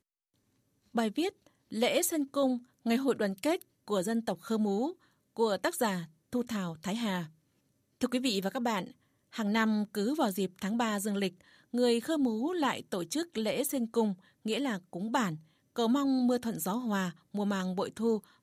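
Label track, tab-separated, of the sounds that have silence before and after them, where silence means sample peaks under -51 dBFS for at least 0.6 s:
0.940000	7.290000	sound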